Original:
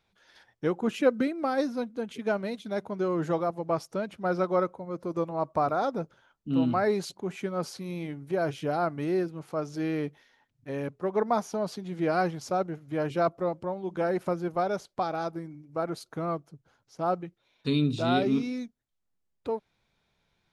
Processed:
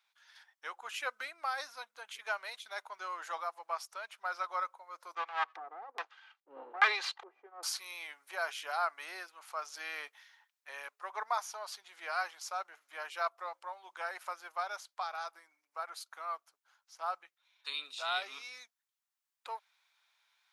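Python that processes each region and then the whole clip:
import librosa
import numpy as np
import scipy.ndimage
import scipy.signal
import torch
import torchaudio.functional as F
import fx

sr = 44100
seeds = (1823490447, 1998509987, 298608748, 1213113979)

y = fx.chain(x, sr, fx.lower_of_two(delay_ms=2.5),
    fx.filter_lfo_lowpass(shape='square', hz=1.2, low_hz=320.0, high_hz=3400.0, q=1.2), at=(5.15, 7.63))
y = scipy.signal.sosfilt(scipy.signal.butter(4, 950.0, 'highpass', fs=sr, output='sos'), y)
y = fx.high_shelf(y, sr, hz=9000.0, db=4.0)
y = fx.rider(y, sr, range_db=10, speed_s=2.0)
y = y * 10.0 ** (-1.5 / 20.0)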